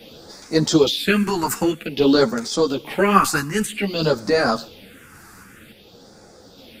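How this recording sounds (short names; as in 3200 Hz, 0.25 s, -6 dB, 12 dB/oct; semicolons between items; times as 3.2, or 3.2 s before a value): phasing stages 4, 0.52 Hz, lowest notch 540–2900 Hz; random-step tremolo; a shimmering, thickened sound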